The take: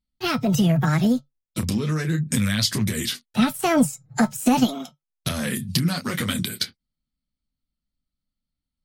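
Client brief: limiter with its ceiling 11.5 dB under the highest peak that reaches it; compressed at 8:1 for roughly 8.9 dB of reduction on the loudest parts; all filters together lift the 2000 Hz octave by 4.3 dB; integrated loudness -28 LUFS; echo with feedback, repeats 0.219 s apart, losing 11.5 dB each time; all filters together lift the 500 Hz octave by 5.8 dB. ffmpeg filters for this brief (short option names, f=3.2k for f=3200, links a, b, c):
-af "equalizer=f=500:t=o:g=7.5,equalizer=f=2k:t=o:g=5,acompressor=threshold=-20dB:ratio=8,alimiter=limit=-17.5dB:level=0:latency=1,aecho=1:1:219|438|657:0.266|0.0718|0.0194"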